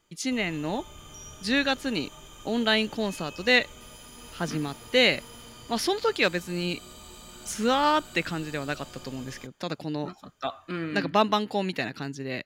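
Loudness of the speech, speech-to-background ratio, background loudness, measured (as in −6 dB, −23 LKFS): −27.0 LKFS, 18.5 dB, −45.5 LKFS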